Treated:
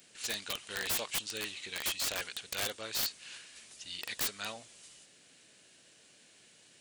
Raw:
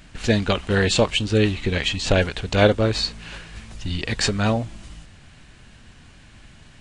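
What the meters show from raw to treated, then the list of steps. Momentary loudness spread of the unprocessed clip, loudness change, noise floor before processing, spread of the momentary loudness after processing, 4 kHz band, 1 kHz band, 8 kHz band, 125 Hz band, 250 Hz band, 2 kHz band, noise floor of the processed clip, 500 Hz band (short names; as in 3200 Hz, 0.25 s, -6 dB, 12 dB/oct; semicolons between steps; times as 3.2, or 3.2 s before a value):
17 LU, -14.0 dB, -48 dBFS, 16 LU, -11.0 dB, -16.5 dB, -5.0 dB, -33.5 dB, -28.5 dB, -13.5 dB, -62 dBFS, -24.5 dB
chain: differentiator; wrapped overs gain 25 dB; band noise 110–650 Hz -70 dBFS; gain -1 dB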